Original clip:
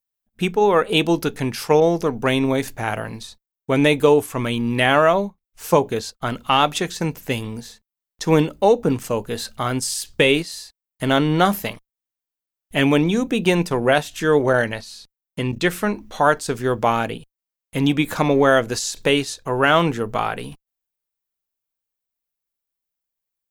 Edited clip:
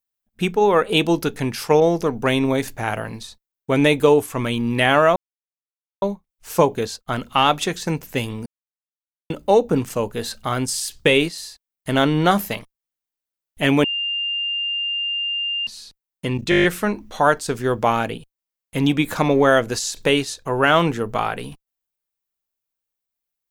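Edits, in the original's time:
5.16 s: insert silence 0.86 s
7.60–8.44 s: mute
12.98–14.81 s: bleep 2.8 kHz -21 dBFS
15.64 s: stutter 0.02 s, 8 plays

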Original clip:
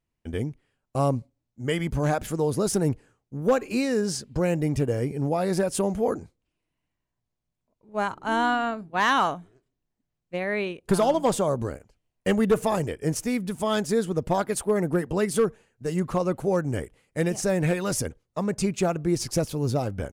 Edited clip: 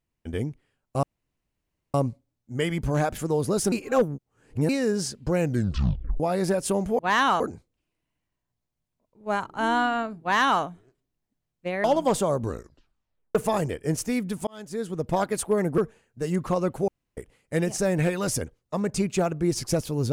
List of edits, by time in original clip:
1.03 s: insert room tone 0.91 s
2.81–3.78 s: reverse
4.49 s: tape stop 0.80 s
8.89–9.30 s: copy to 6.08 s
10.52–11.02 s: delete
11.62 s: tape stop 0.91 s
13.65–14.37 s: fade in
14.96–15.42 s: delete
16.52–16.81 s: room tone

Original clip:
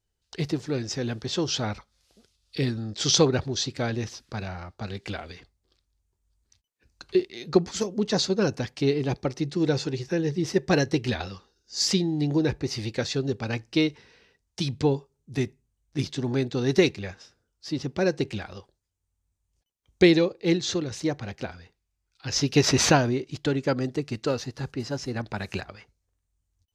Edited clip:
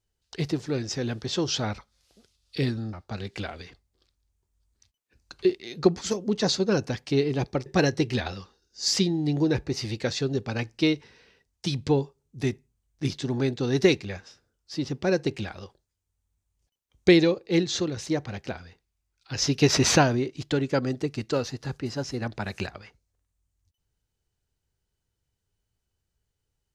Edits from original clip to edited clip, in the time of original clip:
2.93–4.63 s: delete
9.36–10.60 s: delete

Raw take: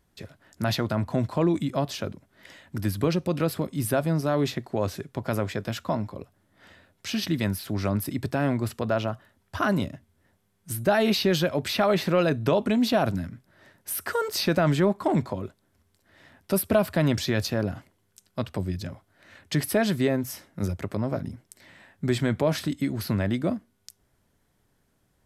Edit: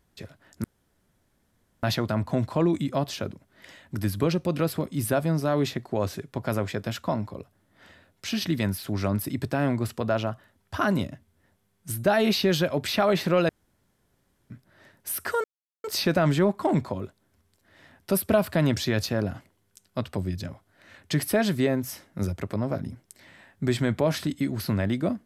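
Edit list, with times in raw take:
0.64 s: insert room tone 1.19 s
12.30–13.31 s: room tone
14.25 s: insert silence 0.40 s

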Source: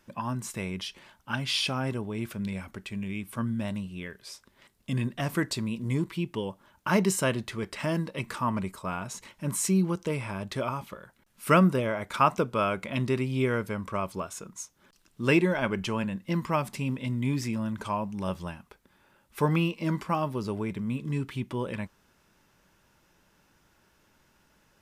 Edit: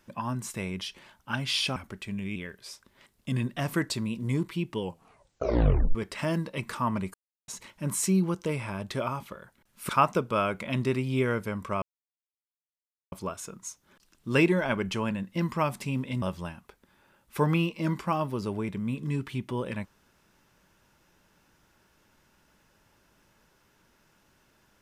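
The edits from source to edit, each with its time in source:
1.76–2.60 s: delete
3.20–3.97 s: delete
6.42 s: tape stop 1.14 s
8.75–9.09 s: mute
11.50–12.12 s: delete
14.05 s: insert silence 1.30 s
17.15–18.24 s: delete

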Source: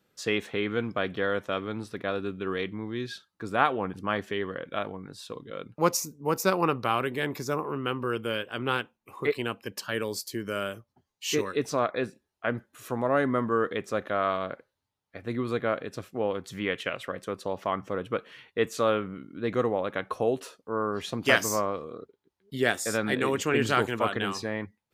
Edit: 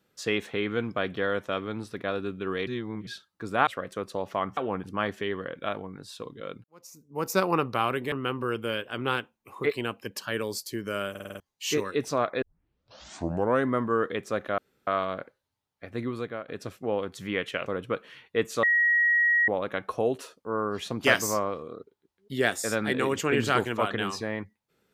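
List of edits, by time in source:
2.67–3.07 s: reverse
5.74–6.45 s: fade in quadratic
7.22–7.73 s: delete
10.71 s: stutter in place 0.05 s, 6 plays
12.03 s: tape start 1.24 s
14.19 s: insert room tone 0.29 s
15.28–15.80 s: fade out, to -14 dB
16.98–17.88 s: move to 3.67 s
18.85–19.70 s: bleep 1.9 kHz -19 dBFS

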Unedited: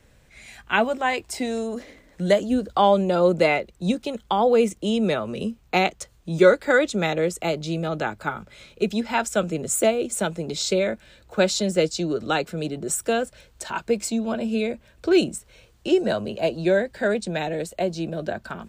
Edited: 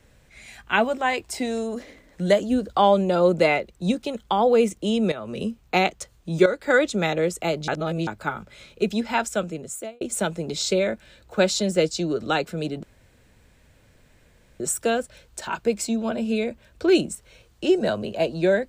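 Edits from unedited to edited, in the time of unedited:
5.12–5.38 s: fade in, from -13.5 dB
6.46–6.74 s: fade in, from -12.5 dB
7.68–8.07 s: reverse
9.15–10.01 s: fade out
12.83 s: insert room tone 1.77 s

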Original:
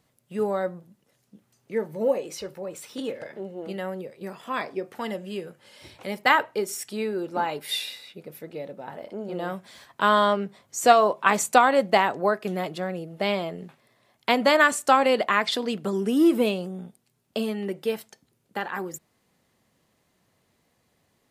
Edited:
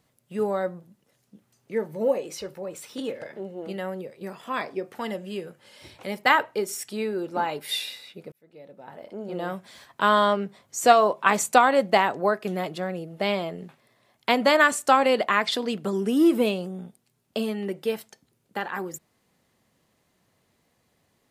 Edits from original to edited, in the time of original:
8.32–9.37 s: fade in

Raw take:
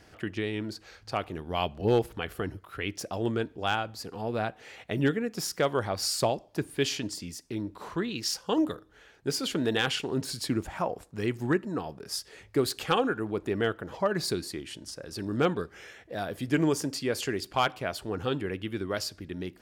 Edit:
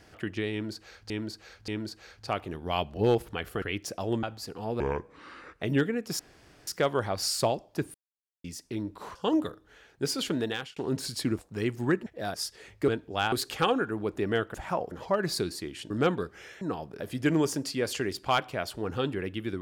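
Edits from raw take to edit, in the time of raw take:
0.52–1.10 s: loop, 3 plays
2.46–2.75 s: delete
3.36–3.80 s: move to 12.61 s
4.37–4.89 s: speed 64%
5.47 s: insert room tone 0.48 s
6.74–7.24 s: mute
7.95–8.40 s: delete
9.56–10.01 s: fade out
10.63–11.00 s: move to 13.83 s
11.68–12.07 s: swap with 16.00–16.28 s
14.82–15.29 s: delete

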